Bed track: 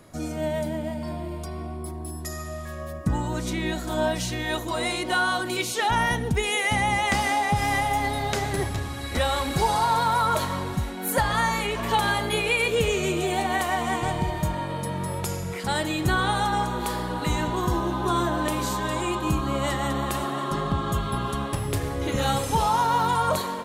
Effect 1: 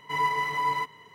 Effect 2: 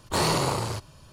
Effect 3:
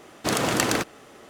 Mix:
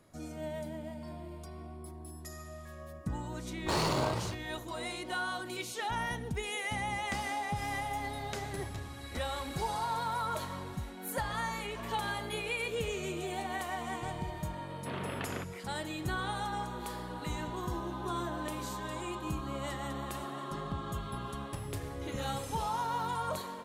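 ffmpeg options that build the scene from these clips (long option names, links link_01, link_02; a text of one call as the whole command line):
ffmpeg -i bed.wav -i cue0.wav -i cue1.wav -i cue2.wav -filter_complex "[0:a]volume=-12dB[link_01];[2:a]adynamicsmooth=sensitivity=7.5:basefreq=2800[link_02];[3:a]highpass=frequency=210:width_type=q:width=0.5412,highpass=frequency=210:width_type=q:width=1.307,lowpass=frequency=3500:width_type=q:width=0.5176,lowpass=frequency=3500:width_type=q:width=0.7071,lowpass=frequency=3500:width_type=q:width=1.932,afreqshift=-67[link_03];[link_02]atrim=end=1.12,asetpts=PTS-STARTPTS,volume=-6.5dB,afade=type=in:duration=0.004:curve=hsin,afade=type=out:start_time=1.116:duration=0.004:curve=hsin,adelay=3550[link_04];[link_03]atrim=end=1.29,asetpts=PTS-STARTPTS,volume=-15dB,afade=type=in:duration=0.004:curve=hsin,afade=type=out:start_time=1.286:duration=0.004:curve=hsin,adelay=14610[link_05];[link_01][link_04][link_05]amix=inputs=3:normalize=0" out.wav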